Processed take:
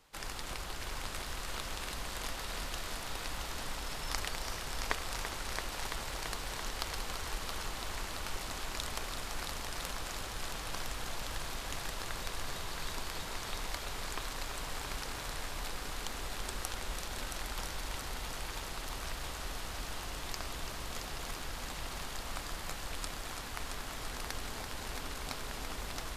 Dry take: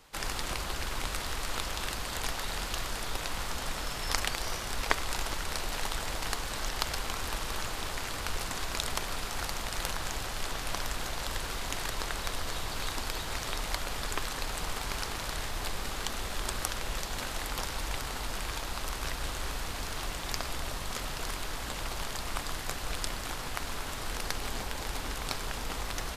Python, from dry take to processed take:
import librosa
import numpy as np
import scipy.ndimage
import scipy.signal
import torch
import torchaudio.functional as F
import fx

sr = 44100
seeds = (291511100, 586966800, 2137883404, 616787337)

y = fx.echo_heads(x, sr, ms=336, heads='first and second', feedback_pct=70, wet_db=-9)
y = y * 10.0 ** (-7.0 / 20.0)